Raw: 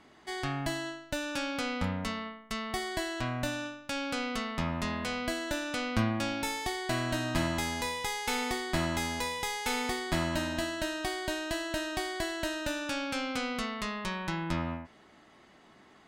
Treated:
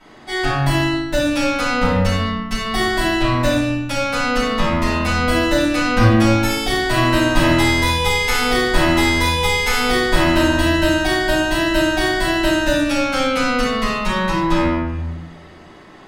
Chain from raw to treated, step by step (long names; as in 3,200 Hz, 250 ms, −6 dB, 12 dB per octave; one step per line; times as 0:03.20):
rectangular room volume 270 cubic metres, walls mixed, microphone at 6.8 metres
level −1 dB